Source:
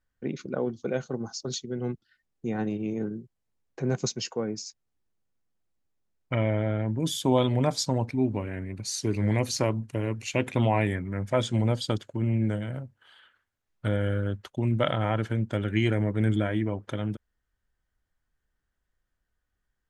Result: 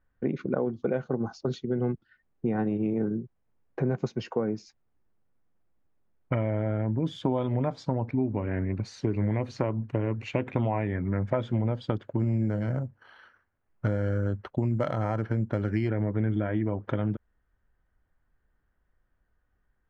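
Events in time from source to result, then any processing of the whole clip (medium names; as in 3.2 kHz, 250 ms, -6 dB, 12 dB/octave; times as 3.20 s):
12.19–15.89 s: careless resampling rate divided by 6×, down filtered, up hold
whole clip: compression, threshold -31 dBFS; low-pass 1.7 kHz 12 dB/octave; trim +7.5 dB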